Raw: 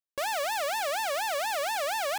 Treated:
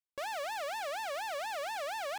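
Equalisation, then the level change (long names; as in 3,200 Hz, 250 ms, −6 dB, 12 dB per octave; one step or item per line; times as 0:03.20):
high-shelf EQ 6,700 Hz −8 dB
−7.0 dB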